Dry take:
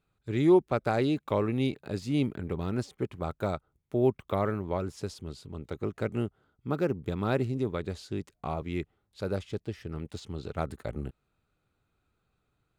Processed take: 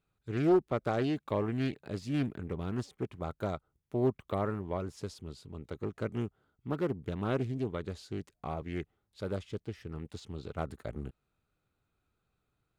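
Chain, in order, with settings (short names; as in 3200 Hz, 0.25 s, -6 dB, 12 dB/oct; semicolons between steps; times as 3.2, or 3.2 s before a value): Doppler distortion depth 0.36 ms; gain -4 dB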